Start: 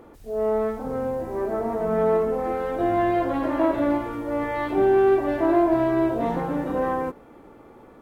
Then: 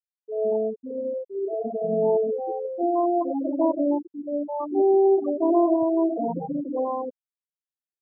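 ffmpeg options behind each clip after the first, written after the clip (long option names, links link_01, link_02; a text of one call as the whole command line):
ffmpeg -i in.wav -af "afftfilt=real='re*gte(hypot(re,im),0.251)':imag='im*gte(hypot(re,im),0.251)':win_size=1024:overlap=0.75" out.wav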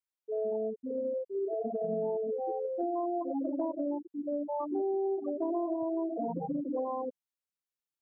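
ffmpeg -i in.wav -af "acompressor=threshold=-28dB:ratio=6,volume=-2dB" out.wav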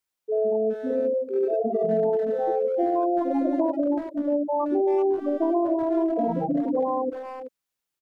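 ffmpeg -i in.wav -filter_complex "[0:a]asplit=2[link_01][link_02];[link_02]adelay=380,highpass=300,lowpass=3400,asoftclip=type=hard:threshold=-31dB,volume=-9dB[link_03];[link_01][link_03]amix=inputs=2:normalize=0,volume=9dB" out.wav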